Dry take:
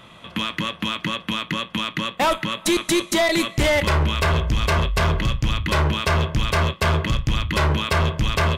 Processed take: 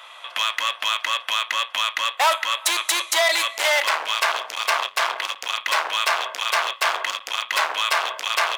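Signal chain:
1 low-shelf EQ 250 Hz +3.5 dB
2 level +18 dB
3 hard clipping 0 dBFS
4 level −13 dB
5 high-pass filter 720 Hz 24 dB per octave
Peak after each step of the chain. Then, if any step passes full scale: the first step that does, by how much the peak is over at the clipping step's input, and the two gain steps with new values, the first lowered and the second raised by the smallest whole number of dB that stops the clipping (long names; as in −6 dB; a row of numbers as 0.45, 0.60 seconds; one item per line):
−11.0, +7.0, 0.0, −13.0, −5.5 dBFS
step 2, 7.0 dB
step 2 +11 dB, step 4 −6 dB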